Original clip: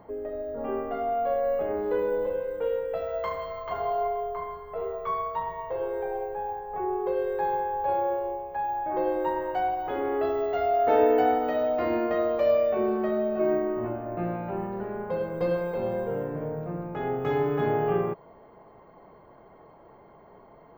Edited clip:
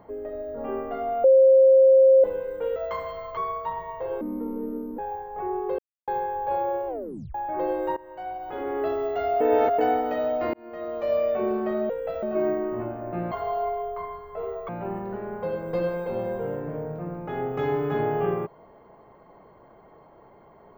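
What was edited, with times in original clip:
1.24–2.24 bleep 531 Hz -11.5 dBFS
2.76–3.09 move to 13.27
3.7–5.07 move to 14.36
5.91–6.36 speed 58%
7.16–7.45 mute
8.25 tape stop 0.47 s
9.34–10.21 fade in, from -20 dB
10.78–11.16 reverse
11.91–12.67 fade in

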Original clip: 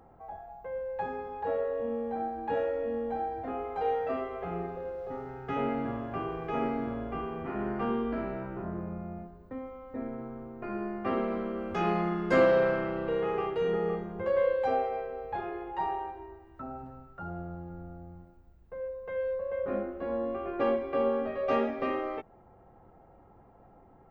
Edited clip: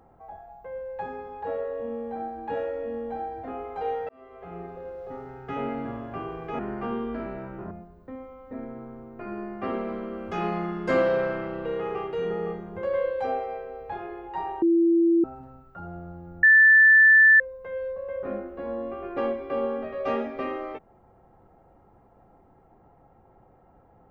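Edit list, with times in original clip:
4.09–5.17 fade in equal-power
6.59–7.57 cut
8.69–9.14 cut
16.05–16.67 bleep 336 Hz -16.5 dBFS
17.86–18.83 bleep 1760 Hz -11.5 dBFS

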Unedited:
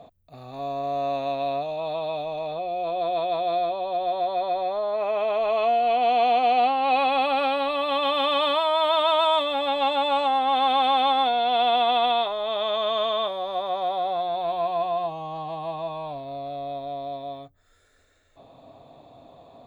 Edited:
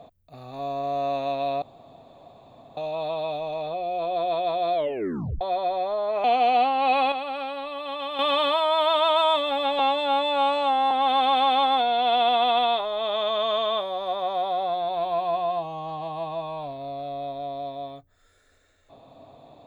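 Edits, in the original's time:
1.62 insert room tone 1.15 s
3.59 tape stop 0.67 s
5.09–6.27 cut
7.15–8.22 gain -8 dB
9.82–10.38 stretch 2×

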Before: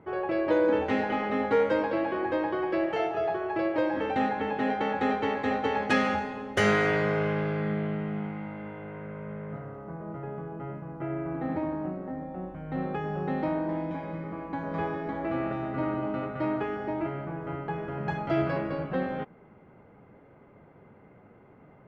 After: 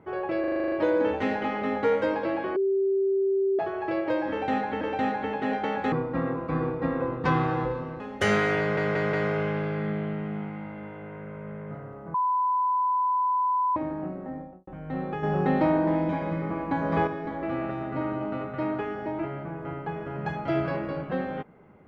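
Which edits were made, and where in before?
0.4 stutter 0.04 s, 9 plays
2.24–3.27 bleep 389 Hz -21 dBFS
3.98–4.49 loop, 2 plays
5.09–6.36 speed 61%
6.95 stutter 0.18 s, 4 plays
9.96–11.58 bleep 1000 Hz -21.5 dBFS
12.15–12.49 studio fade out
13.05–14.89 gain +6.5 dB

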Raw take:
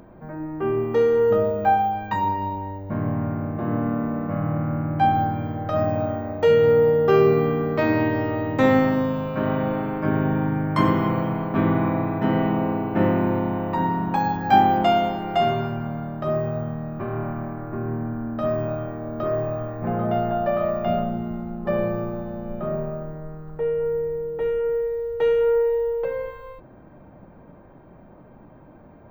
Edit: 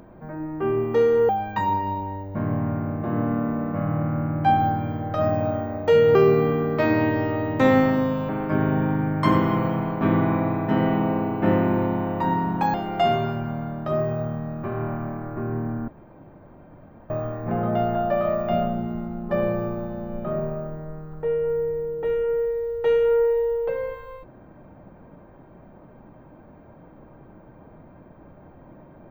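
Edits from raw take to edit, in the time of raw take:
1.29–1.84 cut
6.7–7.14 cut
9.28–9.82 cut
14.27–15.1 cut
18.24–19.46 room tone

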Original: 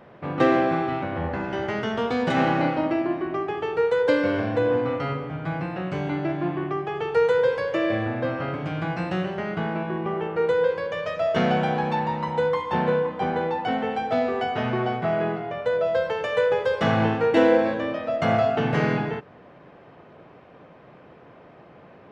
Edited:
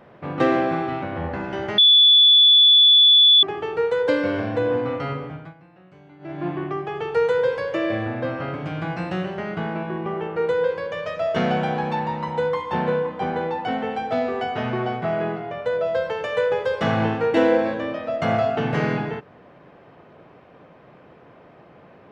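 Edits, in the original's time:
1.78–3.43 bleep 3450 Hz -9.5 dBFS
5.25–6.48 dip -21 dB, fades 0.29 s

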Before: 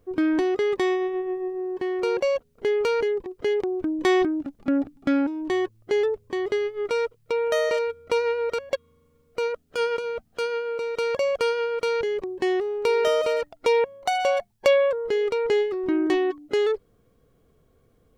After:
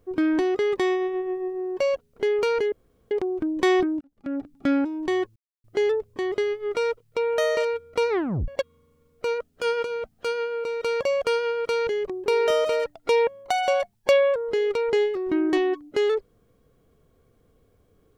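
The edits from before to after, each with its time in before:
1.8–2.22 cut
3.14–3.53 room tone
4.43–5.13 fade in
5.78 insert silence 0.28 s
8.23 tape stop 0.39 s
12.4–12.83 cut

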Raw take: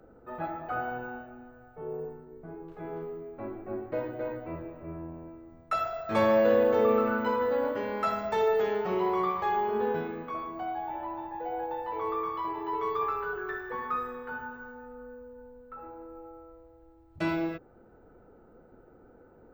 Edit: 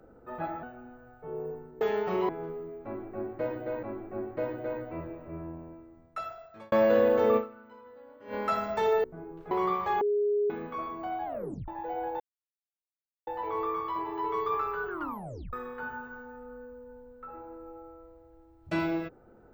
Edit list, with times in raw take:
0.63–1.17 cut
2.35–2.82 swap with 8.59–9.07
3.38–4.36 loop, 2 plays
5.03–6.27 fade out
6.92–7.89 dip -23.5 dB, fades 0.42 s exponential
9.57–10.06 bleep 413 Hz -23.5 dBFS
10.81 tape stop 0.43 s
11.76 insert silence 1.07 s
13.39 tape stop 0.63 s

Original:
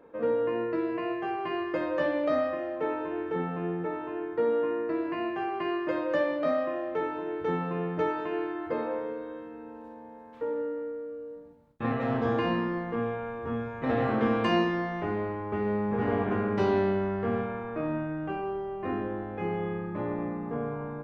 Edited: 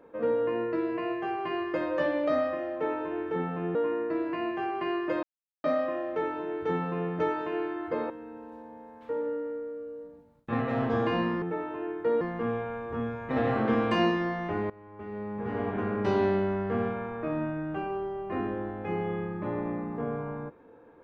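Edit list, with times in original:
3.75–4.54 move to 12.74
6.02–6.43 mute
8.89–9.42 cut
15.23–16.76 fade in, from -20.5 dB

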